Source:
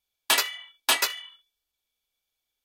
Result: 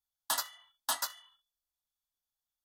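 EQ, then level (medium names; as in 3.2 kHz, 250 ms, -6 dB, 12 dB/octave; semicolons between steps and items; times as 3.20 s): static phaser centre 1 kHz, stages 4; -7.0 dB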